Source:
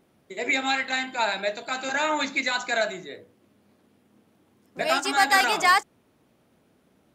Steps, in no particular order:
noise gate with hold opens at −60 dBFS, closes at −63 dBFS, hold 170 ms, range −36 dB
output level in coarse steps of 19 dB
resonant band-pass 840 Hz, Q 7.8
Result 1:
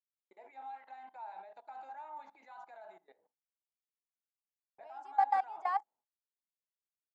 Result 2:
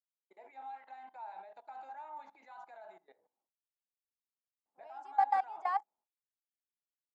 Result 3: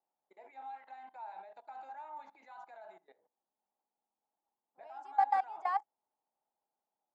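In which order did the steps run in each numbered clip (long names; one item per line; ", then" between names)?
output level in coarse steps, then resonant band-pass, then noise gate with hold
output level in coarse steps, then noise gate with hold, then resonant band-pass
noise gate with hold, then output level in coarse steps, then resonant band-pass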